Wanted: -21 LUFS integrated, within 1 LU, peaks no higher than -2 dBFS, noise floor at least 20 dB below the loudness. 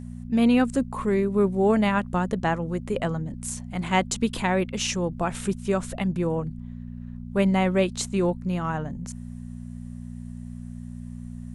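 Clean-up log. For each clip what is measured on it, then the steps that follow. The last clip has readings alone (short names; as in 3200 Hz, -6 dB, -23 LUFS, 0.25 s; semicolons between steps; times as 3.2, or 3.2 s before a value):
hum 60 Hz; harmonics up to 240 Hz; hum level -35 dBFS; loudness -25.0 LUFS; peak -8.0 dBFS; loudness target -21.0 LUFS
-> de-hum 60 Hz, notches 4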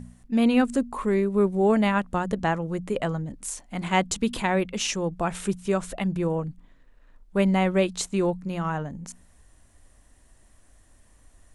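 hum none; loudness -25.5 LUFS; peak -9.0 dBFS; loudness target -21.0 LUFS
-> gain +4.5 dB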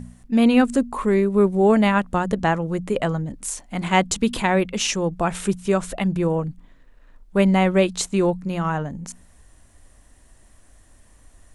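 loudness -21.0 LUFS; peak -4.5 dBFS; noise floor -53 dBFS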